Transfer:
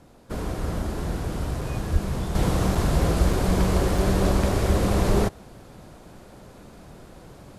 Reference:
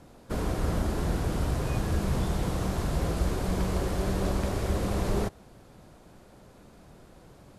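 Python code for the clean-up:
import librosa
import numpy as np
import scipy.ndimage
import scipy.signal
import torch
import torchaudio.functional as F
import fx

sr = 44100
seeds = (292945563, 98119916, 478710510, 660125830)

y = fx.fix_deplosive(x, sr, at_s=(1.92,))
y = fx.fix_interpolate(y, sr, at_s=(1.61, 2.75, 3.33, 3.98), length_ms=3.6)
y = fx.fix_level(y, sr, at_s=2.35, step_db=-7.0)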